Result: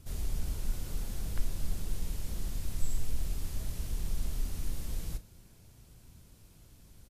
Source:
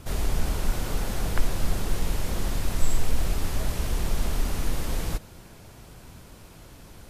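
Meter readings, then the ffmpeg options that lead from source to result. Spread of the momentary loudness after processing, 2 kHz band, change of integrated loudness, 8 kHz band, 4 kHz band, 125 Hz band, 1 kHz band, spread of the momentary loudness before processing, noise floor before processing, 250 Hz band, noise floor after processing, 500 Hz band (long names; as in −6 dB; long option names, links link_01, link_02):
20 LU, −16.0 dB, −9.0 dB, −9.0 dB, −12.0 dB, −8.5 dB, −18.0 dB, 18 LU, −48 dBFS, −11.5 dB, −58 dBFS, −16.0 dB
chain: -filter_complex "[0:a]equalizer=frequency=960:width=0.31:gain=-11,asplit=2[link_01][link_02];[link_02]adelay=37,volume=-13dB[link_03];[link_01][link_03]amix=inputs=2:normalize=0,volume=-7.5dB"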